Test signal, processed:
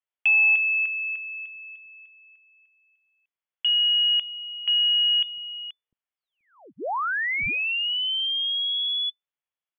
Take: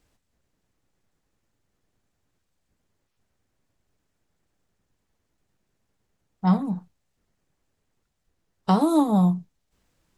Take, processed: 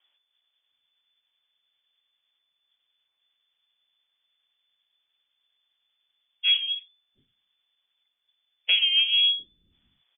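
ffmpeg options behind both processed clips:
-filter_complex "[0:a]acontrast=71,lowpass=f=3000:t=q:w=0.5098,lowpass=f=3000:t=q:w=0.6013,lowpass=f=3000:t=q:w=0.9,lowpass=f=3000:t=q:w=2.563,afreqshift=-3500,acrossover=split=280[s0][s1];[s0]adelay=700[s2];[s2][s1]amix=inputs=2:normalize=0,volume=0.376"

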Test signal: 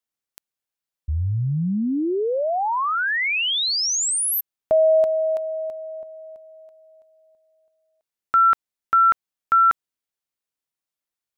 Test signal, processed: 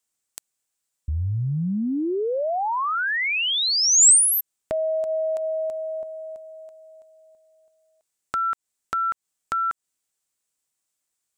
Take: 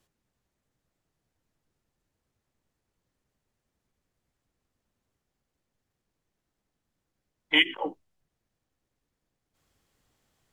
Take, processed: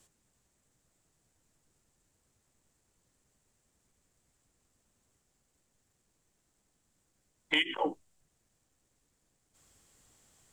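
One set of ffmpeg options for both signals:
-af "acompressor=threshold=0.0501:ratio=12:attack=2.9:release=147:knee=6:detection=rms,equalizer=f=7800:w=1.6:g=12.5,volume=1.58"

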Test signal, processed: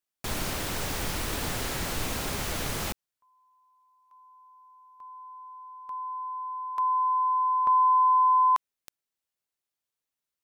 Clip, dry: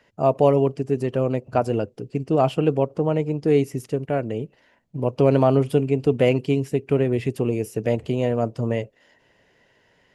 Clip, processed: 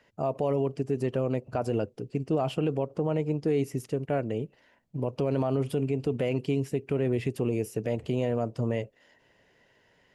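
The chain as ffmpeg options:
-af "alimiter=limit=0.2:level=0:latency=1:release=61,volume=0.668"

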